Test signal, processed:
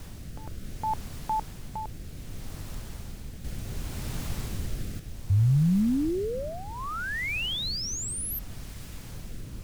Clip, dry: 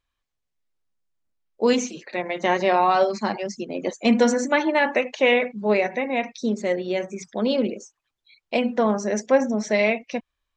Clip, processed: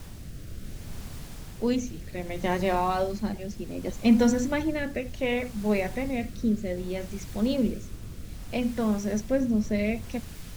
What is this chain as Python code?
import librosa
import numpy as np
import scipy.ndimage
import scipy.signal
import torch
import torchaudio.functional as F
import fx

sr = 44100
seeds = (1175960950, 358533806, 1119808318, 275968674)

y = fx.dmg_noise_colour(x, sr, seeds[0], colour='pink', level_db=-39.0)
y = fx.rotary(y, sr, hz=0.65)
y = fx.bass_treble(y, sr, bass_db=14, treble_db=3)
y = y * librosa.db_to_amplitude(-7.5)